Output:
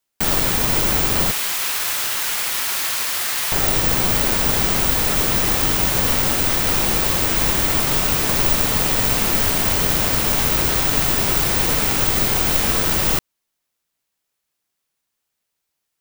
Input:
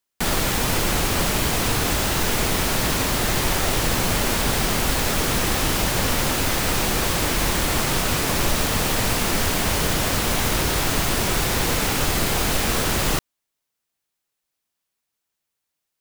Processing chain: 1.31–3.52 s: high-pass 1.2 kHz 12 dB/octave; careless resampling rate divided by 2×, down none, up zero stuff

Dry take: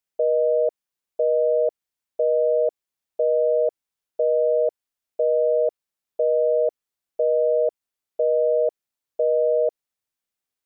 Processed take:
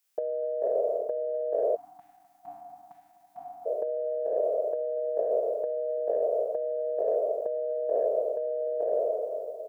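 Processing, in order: spectral sustain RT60 1.98 s; bass shelf 280 Hz -2.5 dB; feedback delay 278 ms, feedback 60%, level -11.5 dB; spectral selection erased 1.92–4.02 s, 320–690 Hz; tilt EQ +2 dB/octave; peak limiter -18 dBFS, peak gain reduction 4 dB; compressor with a negative ratio -27 dBFS, ratio -0.5; tempo 1.1×

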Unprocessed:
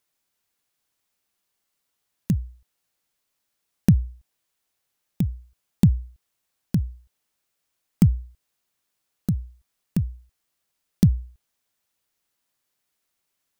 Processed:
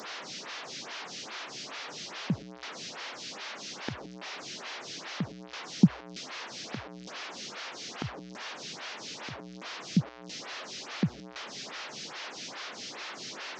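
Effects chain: one-bit delta coder 32 kbps, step -30 dBFS; high-pass 140 Hz 24 dB/octave; lamp-driven phase shifter 2.4 Hz

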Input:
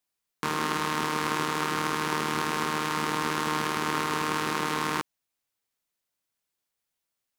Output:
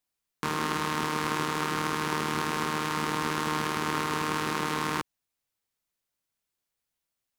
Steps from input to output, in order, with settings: bass shelf 140 Hz +6 dB; trim -1.5 dB

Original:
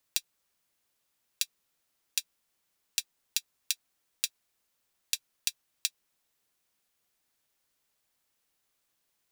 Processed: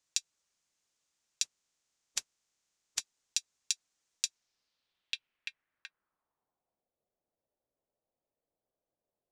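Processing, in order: 1.43–2.99 s: spectral contrast reduction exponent 0.27; low-pass sweep 6.8 kHz -> 600 Hz, 4.29–6.90 s; trim -5 dB

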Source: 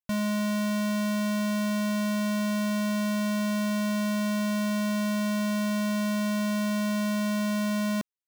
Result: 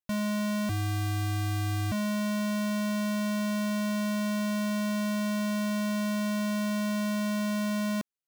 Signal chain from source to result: 0.69–1.92 s: frequency shift -310 Hz; trim -2 dB

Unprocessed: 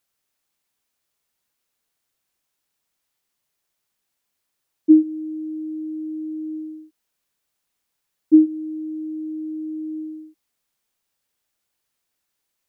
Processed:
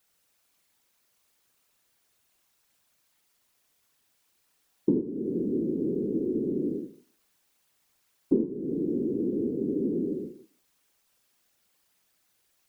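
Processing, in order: compression 4:1, threshold -32 dBFS, peak gain reduction 19.5 dB; Schroeder reverb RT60 0.4 s, combs from 31 ms, DRR 4 dB; whisper effect; trim +5 dB

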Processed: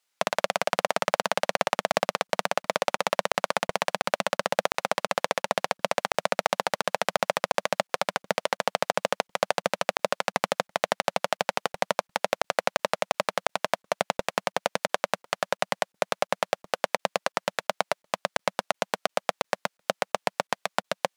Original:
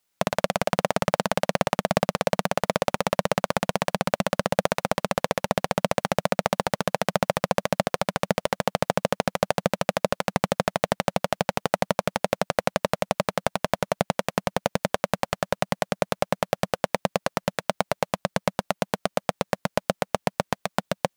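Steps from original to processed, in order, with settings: frequency weighting A; crackling interface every 0.35 s, samples 1024, zero, from 0.87 s

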